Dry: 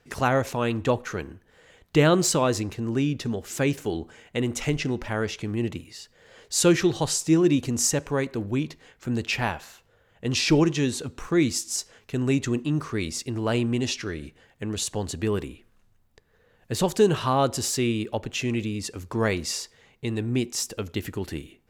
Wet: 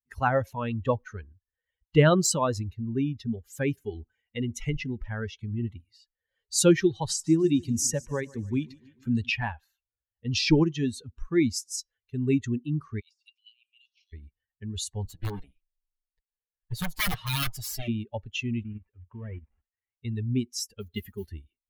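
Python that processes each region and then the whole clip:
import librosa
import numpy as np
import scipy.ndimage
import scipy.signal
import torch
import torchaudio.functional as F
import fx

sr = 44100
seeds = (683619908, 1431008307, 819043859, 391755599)

y = fx.chain(x, sr, fx.echo_feedback(ms=148, feedback_pct=59, wet_db=-13),
    fx.band_squash(depth_pct=40), at=(7.09, 9.3))
y = fx.chain(y, sr, fx.steep_highpass(hz=2400.0, slope=72),
    fx.high_shelf(hz=5600.0, db=-10.0),
    fx.over_compress(threshold_db=-48.0, ratio=-1.0), at=(13.0, 14.13))
y = fx.chain(y, sr, fx.lower_of_two(delay_ms=6.5),
    fx.overflow_wrap(gain_db=18.0), at=(15.05, 17.88))
y = fx.chain(y, sr, fx.cvsd(bps=16000),
    fx.level_steps(step_db=10), at=(18.63, 20.05))
y = fx.chain(y, sr, fx.comb(ms=4.9, depth=0.38),
    fx.mod_noise(seeds[0], snr_db=17), at=(20.8, 21.28))
y = fx.bin_expand(y, sr, power=2.0)
y = fx.low_shelf(y, sr, hz=69.0, db=7.5)
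y = y * librosa.db_to_amplitude(2.0)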